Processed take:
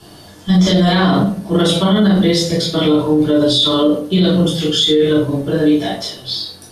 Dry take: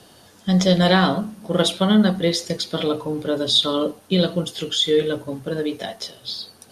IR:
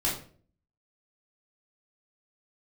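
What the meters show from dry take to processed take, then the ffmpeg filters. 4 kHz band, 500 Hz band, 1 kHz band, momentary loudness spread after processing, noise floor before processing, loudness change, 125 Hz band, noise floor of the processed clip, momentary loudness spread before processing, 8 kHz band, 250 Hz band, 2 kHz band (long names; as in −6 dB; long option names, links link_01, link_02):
+5.0 dB, +5.5 dB, +4.0 dB, 9 LU, −51 dBFS, +6.5 dB, +7.5 dB, −40 dBFS, 14 LU, +4.5 dB, +8.0 dB, +3.0 dB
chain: -filter_complex "[1:a]atrim=start_sample=2205[link_01];[0:a][link_01]afir=irnorm=-1:irlink=0,alimiter=limit=-5dB:level=0:latency=1:release=31"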